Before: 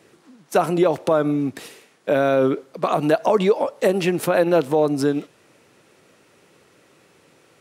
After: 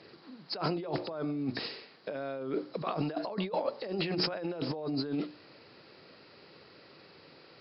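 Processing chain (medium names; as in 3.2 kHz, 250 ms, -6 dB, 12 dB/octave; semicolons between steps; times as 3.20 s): knee-point frequency compression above 3.8 kHz 4:1; hum notches 60/120/180/240/300/360 Hz; compressor with a negative ratio -27 dBFS, ratio -1; trim -7.5 dB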